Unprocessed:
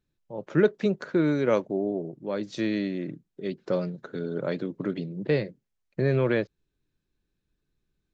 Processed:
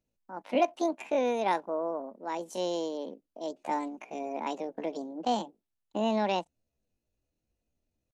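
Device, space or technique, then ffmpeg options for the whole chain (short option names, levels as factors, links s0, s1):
chipmunk voice: -af "asetrate=72056,aresample=44100,atempo=0.612027,volume=0.596"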